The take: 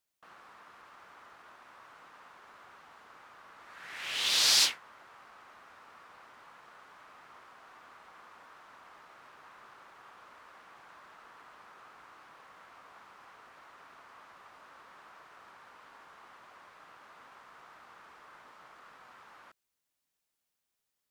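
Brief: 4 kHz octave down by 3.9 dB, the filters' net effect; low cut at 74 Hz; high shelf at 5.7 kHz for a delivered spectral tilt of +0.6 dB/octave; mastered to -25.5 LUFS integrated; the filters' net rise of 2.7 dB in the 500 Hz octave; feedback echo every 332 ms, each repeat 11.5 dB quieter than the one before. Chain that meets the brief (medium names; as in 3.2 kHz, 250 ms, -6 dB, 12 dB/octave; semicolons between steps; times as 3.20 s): high-pass 74 Hz; peaking EQ 500 Hz +3.5 dB; peaking EQ 4 kHz -7.5 dB; treble shelf 5.7 kHz +6 dB; feedback delay 332 ms, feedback 27%, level -11.5 dB; trim +3.5 dB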